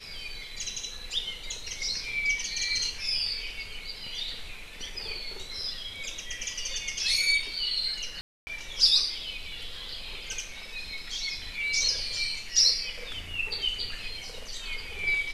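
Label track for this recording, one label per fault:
8.210000	8.470000	drop-out 260 ms

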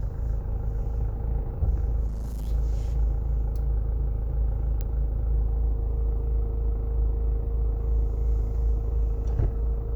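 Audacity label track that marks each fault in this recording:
2.060000	2.490000	clipping −28 dBFS
4.810000	4.810000	click −18 dBFS

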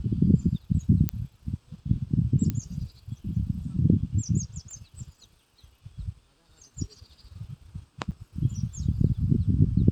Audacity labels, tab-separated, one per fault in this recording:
1.090000	1.090000	click −10 dBFS
2.500000	2.500000	click −15 dBFS
4.710000	4.710000	click −33 dBFS
8.110000	8.120000	drop-out 7.5 ms

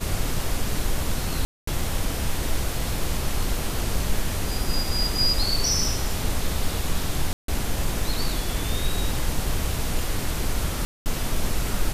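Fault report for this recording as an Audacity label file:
1.450000	1.670000	drop-out 224 ms
7.330000	7.480000	drop-out 153 ms
10.850000	11.060000	drop-out 209 ms

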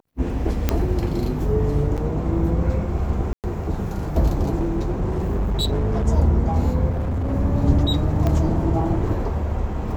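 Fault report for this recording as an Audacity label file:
0.690000	0.690000	click −5 dBFS
1.970000	1.980000	drop-out 7.7 ms
3.330000	3.440000	drop-out 108 ms
4.580000	6.070000	clipping −18 dBFS
6.890000	7.340000	clipping −20.5 dBFS
8.270000	8.270000	click −11 dBFS

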